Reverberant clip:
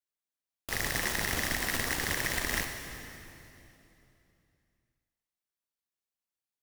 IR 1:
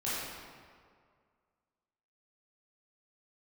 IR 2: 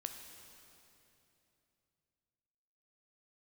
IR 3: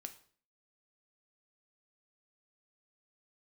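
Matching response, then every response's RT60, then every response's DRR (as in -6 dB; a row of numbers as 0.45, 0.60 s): 2; 2.0, 3.0, 0.50 s; -11.0, 4.5, 7.0 dB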